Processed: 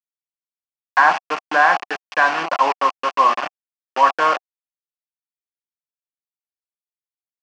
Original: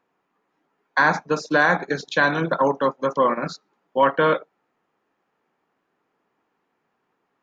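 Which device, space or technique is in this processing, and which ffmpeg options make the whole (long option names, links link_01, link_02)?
hand-held game console: -af "acrusher=bits=3:mix=0:aa=0.000001,highpass=400,equalizer=frequency=500:width_type=q:width=4:gain=-7,equalizer=frequency=750:width_type=q:width=4:gain=10,equalizer=frequency=1100:width_type=q:width=4:gain=9,equalizer=frequency=1700:width_type=q:width=4:gain=3,equalizer=frequency=2700:width_type=q:width=4:gain=7,equalizer=frequency=3800:width_type=q:width=4:gain=-8,lowpass=frequency=5200:width=0.5412,lowpass=frequency=5200:width=1.3066,volume=-1.5dB"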